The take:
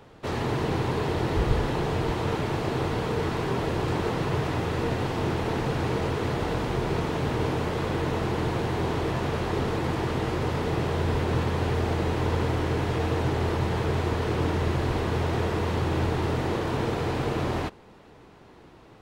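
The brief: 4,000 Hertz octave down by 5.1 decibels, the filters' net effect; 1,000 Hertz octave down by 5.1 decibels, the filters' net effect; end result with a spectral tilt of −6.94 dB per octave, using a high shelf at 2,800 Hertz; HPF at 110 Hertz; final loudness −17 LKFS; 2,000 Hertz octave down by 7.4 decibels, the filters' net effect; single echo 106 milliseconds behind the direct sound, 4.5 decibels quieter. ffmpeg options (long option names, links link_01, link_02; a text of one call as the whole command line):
ffmpeg -i in.wav -af "highpass=110,equalizer=frequency=1000:width_type=o:gain=-5,equalizer=frequency=2000:width_type=o:gain=-8,highshelf=frequency=2800:gain=4.5,equalizer=frequency=4000:width_type=o:gain=-7,aecho=1:1:106:0.596,volume=11dB" out.wav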